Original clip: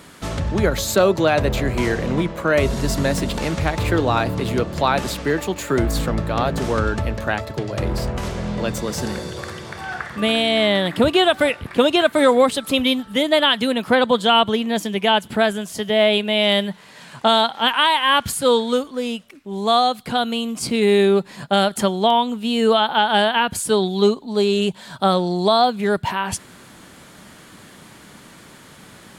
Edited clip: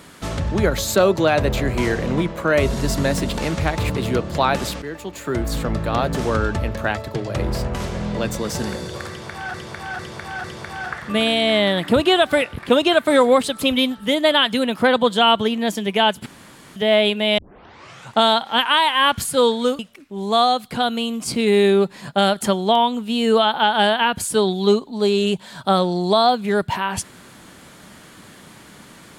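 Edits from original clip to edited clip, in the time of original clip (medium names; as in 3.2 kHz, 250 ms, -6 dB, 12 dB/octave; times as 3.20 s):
3.90–4.33 s: delete
5.25–6.28 s: fade in, from -12.5 dB
9.52–9.97 s: loop, 4 plays
15.34–15.84 s: room tone
16.46 s: tape start 0.76 s
18.87–19.14 s: delete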